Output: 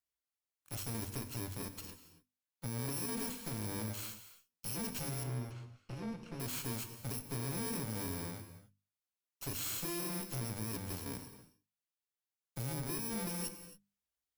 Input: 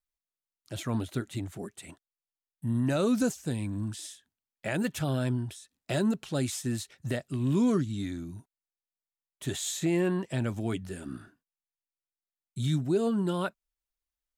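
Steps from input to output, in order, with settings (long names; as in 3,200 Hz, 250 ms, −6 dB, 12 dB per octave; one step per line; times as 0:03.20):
samples in bit-reversed order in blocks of 64 samples
high-pass filter 53 Hz 24 dB per octave
mains-hum notches 50/100/150/200/250 Hz
downward compressor, threshold −29 dBFS, peak gain reduction 8 dB
tube saturation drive 38 dB, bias 0.75
0:05.23–0:06.40: head-to-tape spacing loss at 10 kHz 24 dB
reverb whose tail is shaped and stops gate 300 ms flat, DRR 9 dB
level +2.5 dB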